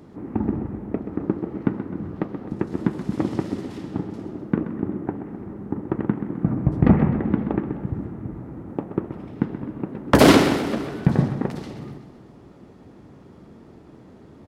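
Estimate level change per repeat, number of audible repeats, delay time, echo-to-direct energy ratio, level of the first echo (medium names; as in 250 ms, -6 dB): -5.0 dB, 5, 129 ms, -9.5 dB, -11.0 dB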